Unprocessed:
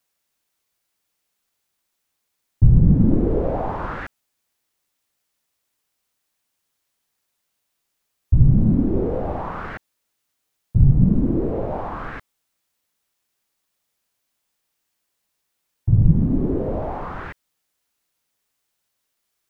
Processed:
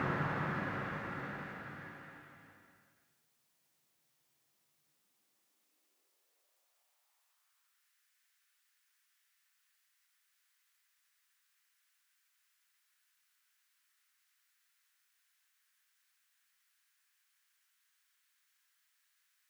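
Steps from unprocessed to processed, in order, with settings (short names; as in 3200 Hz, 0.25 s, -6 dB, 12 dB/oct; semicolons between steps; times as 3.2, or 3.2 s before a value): Paulstretch 7×, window 1.00 s, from 4.09; high-pass sweep 140 Hz -> 1600 Hz, 4.78–7.96; gain -2 dB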